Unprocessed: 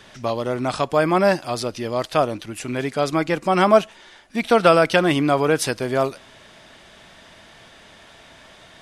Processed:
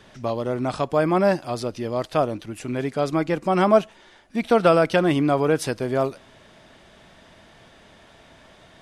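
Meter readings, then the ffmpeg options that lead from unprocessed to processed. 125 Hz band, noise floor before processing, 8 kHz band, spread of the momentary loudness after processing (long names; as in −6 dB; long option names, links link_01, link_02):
0.0 dB, −48 dBFS, −7.0 dB, 11 LU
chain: -af "tiltshelf=frequency=970:gain=3.5,volume=-3.5dB"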